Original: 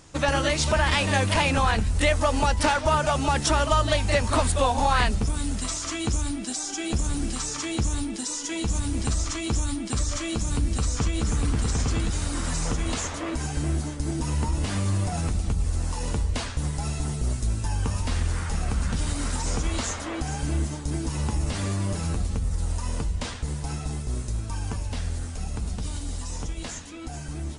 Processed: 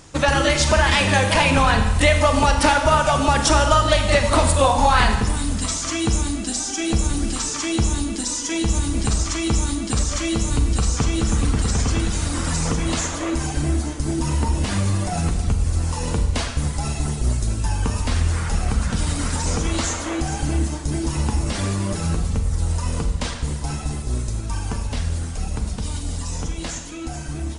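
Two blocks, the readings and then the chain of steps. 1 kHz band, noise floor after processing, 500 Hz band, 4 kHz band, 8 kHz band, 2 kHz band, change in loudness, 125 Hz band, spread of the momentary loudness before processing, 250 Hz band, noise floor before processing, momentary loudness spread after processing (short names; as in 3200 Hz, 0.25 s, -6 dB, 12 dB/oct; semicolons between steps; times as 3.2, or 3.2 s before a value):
+6.0 dB, -29 dBFS, +6.0 dB, +6.0 dB, +5.5 dB, +6.0 dB, +5.5 dB, +5.0 dB, 10 LU, +6.0 dB, -34 dBFS, 11 LU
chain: reverb removal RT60 0.59 s; Schroeder reverb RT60 1.1 s, combs from 33 ms, DRR 5 dB; gain +5.5 dB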